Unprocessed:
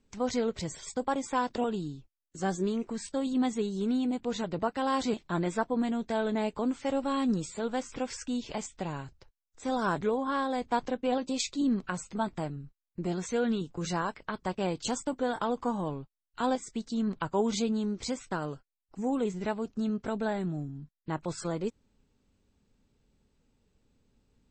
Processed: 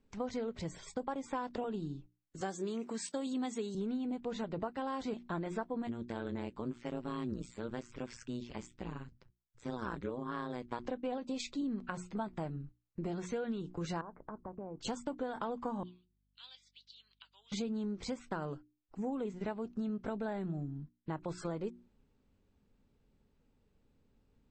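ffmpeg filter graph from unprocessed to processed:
-filter_complex "[0:a]asettb=1/sr,asplit=3[s0][s1][s2];[s0]atrim=end=2.414[s3];[s1]atrim=start=2.41:end=3.75,asetpts=PTS-STARTPTS,afade=t=in:d=0.004:c=qsin,afade=t=out:st=1.336:d=0.004:c=qsin,highpass=210,aemphasis=mode=production:type=75kf[s4];[s2]atrim=start=3.746[s5];[s3][s4]acrossfade=d=0.004:c1=hsin:c2=qsin[s6];[s6][s5]acrossfade=d=0.004:c1=qsin:c2=hsin,asettb=1/sr,asplit=3[s7][s8][s9];[s7]atrim=end=5.874[s10];[s8]atrim=start=5.87:end=10.85,asetpts=PTS-STARTPTS,afade=t=in:d=0.004:c=qsin,afade=t=out:st=4.976:d=0.004:c=qsin,equalizer=f=690:w=2:g=-10,tremolo=f=120:d=0.947[s11];[s9]atrim=start=10.846[s12];[s10][s11]acrossfade=d=0.004:c1=hsin:c2=qsin[s13];[s13][s12]acrossfade=d=0.004:c1=qsin:c2=hsin,asettb=1/sr,asplit=3[s14][s15][s16];[s14]atrim=end=14.014[s17];[s15]atrim=start=14.01:end=14.81,asetpts=PTS-STARTPTS,afade=t=in:d=0.004:c=qsin,afade=t=out:st=0.796:d=0.004:c=qsin,lowpass=f=1200:w=0.5412,lowpass=f=1200:w=1.3066,acompressor=threshold=0.0112:ratio=6:attack=3.2:release=140:knee=1:detection=peak[s18];[s16]atrim=start=14.806[s19];[s17][s18]acrossfade=d=0.004:c1=hsin:c2=qsin[s20];[s20][s19]acrossfade=d=0.004:c1=qsin:c2=hsin,asettb=1/sr,asplit=3[s21][s22][s23];[s21]atrim=end=15.834[s24];[s22]atrim=start=15.83:end=17.52,asetpts=PTS-STARTPTS,afade=t=in:d=0.004:c=qsin,afade=t=out:st=1.686:d=0.004:c=qsin,asuperpass=centerf=3700:order=4:qfactor=1.9,aeval=exprs='val(0)+0.000141*(sin(2*PI*50*n/s)+sin(2*PI*2*50*n/s)/2+sin(2*PI*3*50*n/s)/3+sin(2*PI*4*50*n/s)/4+sin(2*PI*5*50*n/s)/5)':c=same[s25];[s23]atrim=start=17.516[s26];[s24][s25]acrossfade=d=0.004:c1=hsin:c2=qsin[s27];[s27][s26]acrossfade=d=0.004:c1=qsin:c2=hsin,lowpass=f=2400:p=1,bandreject=f=60:t=h:w=6,bandreject=f=120:t=h:w=6,bandreject=f=180:t=h:w=6,bandreject=f=240:t=h:w=6,bandreject=f=300:t=h:w=6,bandreject=f=360:t=h:w=6,acompressor=threshold=0.0224:ratio=6,volume=0.891"

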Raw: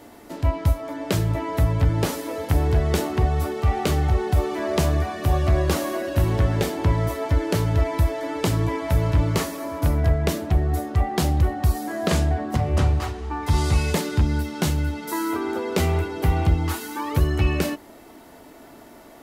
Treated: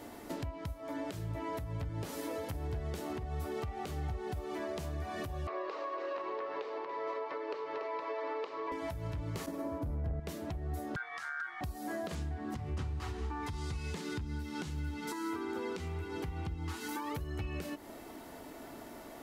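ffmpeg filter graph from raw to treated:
-filter_complex "[0:a]asettb=1/sr,asplit=3[s0][s1][s2];[s0]atrim=end=5.474[s3];[s1]atrim=start=5.47:end=8.72,asetpts=PTS-STARTPTS,afade=t=in:d=0.004:c=qsin,afade=t=out:st=3.246:d=0.004:c=qsin,highpass=f=420:w=0.5412,highpass=f=420:w=1.3066,equalizer=f=440:t=q:w=4:g=7,equalizer=f=710:t=q:w=4:g=-4,equalizer=f=1100:t=q:w=4:g=10,equalizer=f=1500:t=q:w=4:g=-4,equalizer=f=3300:t=q:w=4:g=-7,lowpass=f=4000:w=0.5412,lowpass=f=4000:w=1.3066,aecho=1:1:285:0.282,atrim=end_sample=143325[s4];[s2]atrim=start=8.716[s5];[s3][s4]acrossfade=d=0.004:c1=hsin:c2=qsin[s6];[s6][s5]acrossfade=d=0.004:c1=qsin:c2=hsin,asettb=1/sr,asplit=3[s7][s8][s9];[s7]atrim=end=9.464[s10];[s8]atrim=start=9.46:end=10.2,asetpts=PTS-STARTPTS,afade=t=in:d=0.004:c=qsin,afade=t=out:st=0.736:d=0.004:c=qsin,tiltshelf=f=1200:g=7,acontrast=77,agate=range=0.0224:threshold=0.158:ratio=3:release=100:detection=peak[s11];[s9]atrim=start=10.196[s12];[s10][s11]acrossfade=d=0.004:c1=hsin:c2=qsin[s13];[s13][s12]acrossfade=d=0.004:c1=qsin:c2=hsin,asettb=1/sr,asplit=3[s14][s15][s16];[s14]atrim=end=10.964[s17];[s15]atrim=start=10.96:end=11.61,asetpts=PTS-STARTPTS,afade=t=in:d=0.004:c=qsin,afade=t=out:st=0.646:d=0.004:c=qsin,equalizer=f=1100:t=o:w=0.43:g=-14.5,aeval=exprs='val(0)*sin(2*PI*1500*n/s)':c=same,highpass=100,lowpass=7800[s18];[s16]atrim=start=11.606[s19];[s17][s18]acrossfade=d=0.004:c1=hsin:c2=qsin[s20];[s20][s19]acrossfade=d=0.004:c1=qsin:c2=hsin,asettb=1/sr,asplit=3[s21][s22][s23];[s21]atrim=end=12.154[s24];[s22]atrim=start=12.15:end=16.89,asetpts=PTS-STARTPTS,afade=t=in:d=0.004:c=qsin,afade=t=out:st=4.736:d=0.004:c=qsin,acrossover=split=8800[s25][s26];[s26]acompressor=threshold=0.00224:ratio=4:attack=1:release=60[s27];[s25][s27]amix=inputs=2:normalize=0,equalizer=f=610:w=3.6:g=-11[s28];[s23]atrim=start=16.886[s29];[s24][s28]acrossfade=d=0.004:c1=hsin:c2=qsin[s30];[s30][s29]acrossfade=d=0.004:c1=qsin:c2=hsin,acompressor=threshold=0.0316:ratio=10,alimiter=level_in=1.41:limit=0.0631:level=0:latency=1:release=173,volume=0.708,volume=0.75"

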